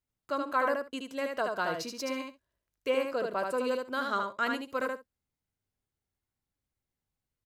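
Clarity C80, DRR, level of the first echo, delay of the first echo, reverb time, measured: none, none, -4.0 dB, 76 ms, none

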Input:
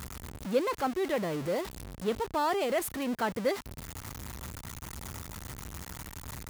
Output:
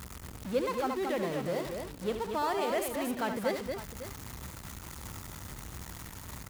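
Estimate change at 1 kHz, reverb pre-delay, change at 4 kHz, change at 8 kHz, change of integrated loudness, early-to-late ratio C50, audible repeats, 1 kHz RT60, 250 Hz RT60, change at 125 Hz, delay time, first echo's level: -1.5 dB, none, -1.5 dB, -1.5 dB, -1.5 dB, none, 3, none, none, -1.5 dB, 72 ms, -8.5 dB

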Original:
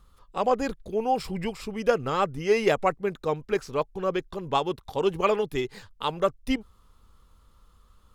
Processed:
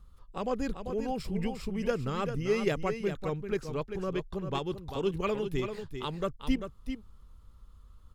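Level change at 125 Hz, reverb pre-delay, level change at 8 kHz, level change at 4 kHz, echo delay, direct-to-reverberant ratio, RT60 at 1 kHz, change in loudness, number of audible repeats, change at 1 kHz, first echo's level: +1.0 dB, none, -6.0 dB, -6.0 dB, 0.392 s, none, none, -6.0 dB, 1, -10.5 dB, -8.0 dB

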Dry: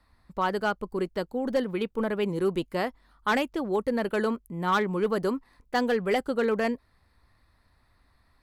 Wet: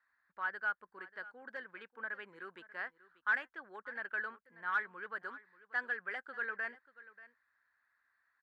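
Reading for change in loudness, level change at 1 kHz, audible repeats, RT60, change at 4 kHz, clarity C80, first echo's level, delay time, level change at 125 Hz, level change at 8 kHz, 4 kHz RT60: -11.5 dB, -13.0 dB, 1, none, -19.5 dB, none, -18.0 dB, 0.587 s, under -30 dB, under -25 dB, none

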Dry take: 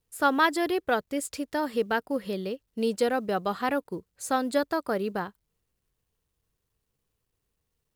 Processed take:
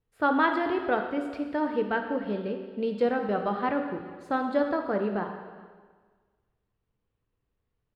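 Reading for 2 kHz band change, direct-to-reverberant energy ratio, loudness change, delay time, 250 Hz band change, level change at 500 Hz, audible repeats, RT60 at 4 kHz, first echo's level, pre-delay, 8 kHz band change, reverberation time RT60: -1.5 dB, 4.0 dB, -0.5 dB, 0.409 s, +1.0 dB, 0.0 dB, 1, 1.4 s, -22.5 dB, 4 ms, under -25 dB, 1.5 s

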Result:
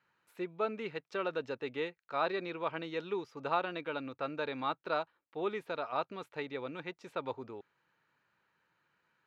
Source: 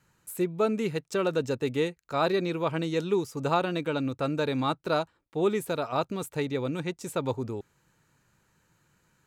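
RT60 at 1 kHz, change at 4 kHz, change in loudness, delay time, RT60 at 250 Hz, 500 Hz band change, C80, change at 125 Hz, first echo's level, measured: none, -8.0 dB, -8.5 dB, none, none, -9.0 dB, none, -17.5 dB, none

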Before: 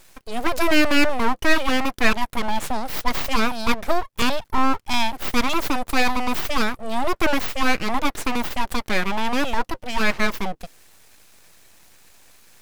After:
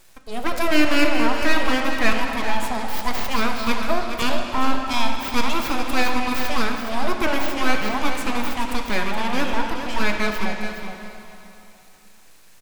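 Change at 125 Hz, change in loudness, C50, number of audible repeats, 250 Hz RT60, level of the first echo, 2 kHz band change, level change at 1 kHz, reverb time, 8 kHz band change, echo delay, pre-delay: +1.0 dB, -0.5 dB, 2.5 dB, 1, 2.9 s, -9.0 dB, -0.5 dB, -0.5 dB, 3.0 s, -1.0 dB, 0.419 s, 5 ms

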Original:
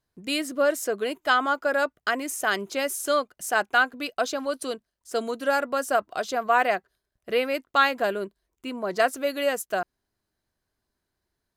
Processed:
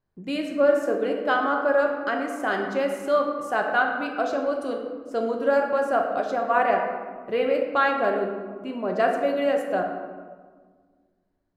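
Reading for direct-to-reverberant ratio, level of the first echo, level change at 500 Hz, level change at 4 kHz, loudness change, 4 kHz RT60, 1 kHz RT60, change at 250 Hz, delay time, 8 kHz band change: 1.5 dB, none, +4.0 dB, -7.0 dB, +1.0 dB, 0.85 s, 1.5 s, +4.0 dB, none, under -10 dB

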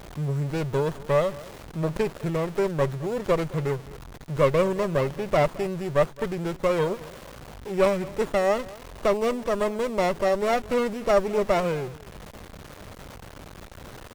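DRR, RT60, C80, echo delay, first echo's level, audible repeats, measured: none, none, none, 0.216 s, -20.0 dB, 1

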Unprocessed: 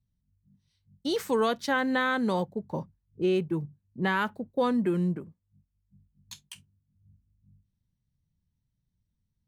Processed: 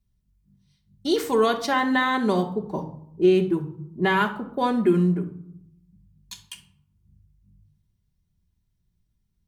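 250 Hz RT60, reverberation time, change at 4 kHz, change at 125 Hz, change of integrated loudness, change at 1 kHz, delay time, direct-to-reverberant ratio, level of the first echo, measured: 1.1 s, 0.75 s, +5.0 dB, +6.0 dB, +5.5 dB, +6.0 dB, none, 2.5 dB, none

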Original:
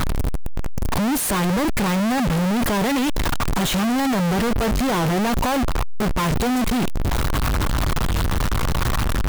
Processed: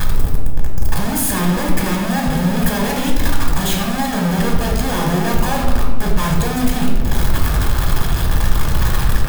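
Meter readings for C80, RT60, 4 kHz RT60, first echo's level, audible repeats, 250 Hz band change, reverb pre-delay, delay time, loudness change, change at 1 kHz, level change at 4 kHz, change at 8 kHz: 5.5 dB, 1.3 s, 0.80 s, none, none, +1.5 dB, 3 ms, none, +2.5 dB, +1.0 dB, +2.0 dB, +3.5 dB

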